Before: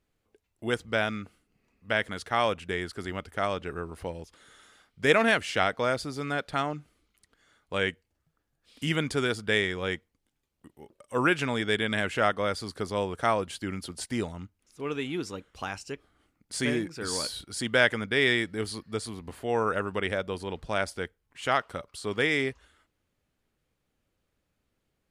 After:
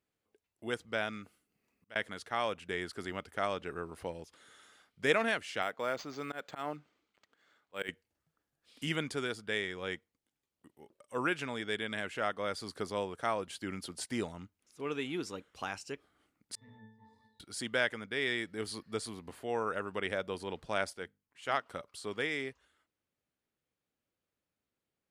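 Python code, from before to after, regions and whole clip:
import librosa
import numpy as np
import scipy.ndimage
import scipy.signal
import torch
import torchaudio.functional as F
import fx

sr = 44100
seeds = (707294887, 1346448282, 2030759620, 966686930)

y = fx.chain(x, sr, fx.high_shelf(hz=9300.0, db=11.0),
    fx.auto_swell(attack_ms=557.0), at=(1.13, 1.96))
y = fx.chain(y, sr, fx.highpass(hz=230.0, slope=6),
    fx.auto_swell(attack_ms=134.0),
    fx.resample_linear(factor=4), at=(5.62, 7.89))
y = fx.chain(y, sr, fx.lower_of_two(delay_ms=1.0),
    fx.octave_resonator(note='A', decay_s=0.66), at=(16.55, 17.4))
y = fx.chain(y, sr, fx.hum_notches(base_hz=50, count=6),
    fx.upward_expand(threshold_db=-34.0, expansion=1.5), at=(20.93, 21.66))
y = fx.highpass(y, sr, hz=170.0, slope=6)
y = fx.rider(y, sr, range_db=3, speed_s=0.5)
y = y * librosa.db_to_amplitude(-6.5)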